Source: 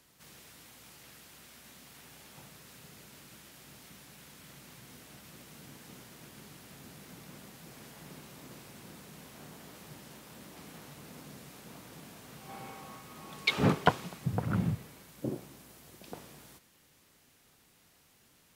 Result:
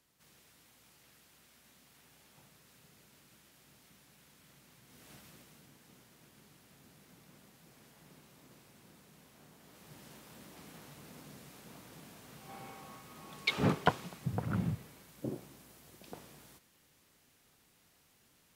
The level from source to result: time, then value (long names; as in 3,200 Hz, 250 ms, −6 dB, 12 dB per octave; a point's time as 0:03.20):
0:04.86 −9.5 dB
0:05.12 −2.5 dB
0:05.71 −10 dB
0:09.58 −10 dB
0:10.05 −3.5 dB